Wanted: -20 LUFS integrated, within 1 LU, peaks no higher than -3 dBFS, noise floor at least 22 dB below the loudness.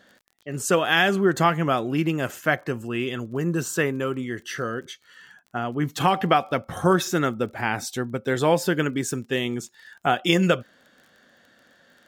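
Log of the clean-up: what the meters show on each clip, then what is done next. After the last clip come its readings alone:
ticks 21/s; loudness -24.0 LUFS; peak -5.5 dBFS; loudness target -20.0 LUFS
-> de-click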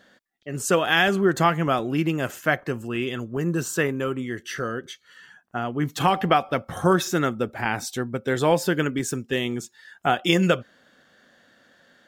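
ticks 0.083/s; loudness -24.0 LUFS; peak -5.5 dBFS; loudness target -20.0 LUFS
-> gain +4 dB; limiter -3 dBFS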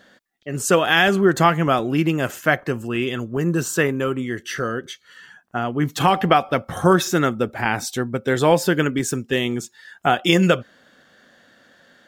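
loudness -20.0 LUFS; peak -3.0 dBFS; noise floor -57 dBFS

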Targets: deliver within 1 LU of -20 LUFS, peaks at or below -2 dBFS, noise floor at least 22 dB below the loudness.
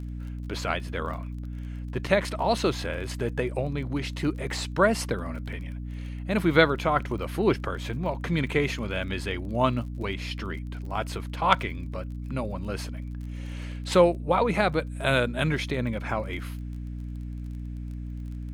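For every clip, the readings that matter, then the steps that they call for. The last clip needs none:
ticks 27/s; hum 60 Hz; harmonics up to 300 Hz; hum level -32 dBFS; loudness -28.0 LUFS; peak -3.5 dBFS; loudness target -20.0 LUFS
-> de-click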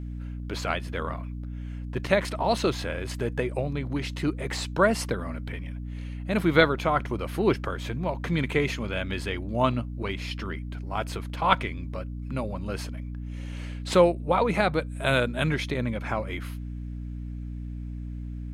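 ticks 0/s; hum 60 Hz; harmonics up to 300 Hz; hum level -32 dBFS
-> de-hum 60 Hz, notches 5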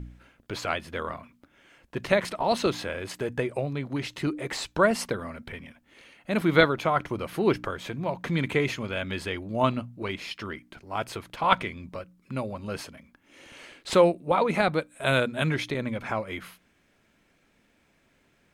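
hum none; loudness -27.5 LUFS; peak -4.5 dBFS; loudness target -20.0 LUFS
-> gain +7.5 dB; limiter -2 dBFS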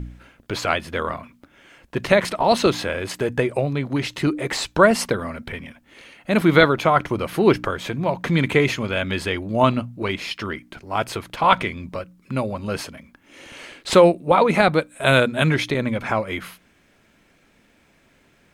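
loudness -20.5 LUFS; peak -2.0 dBFS; noise floor -59 dBFS

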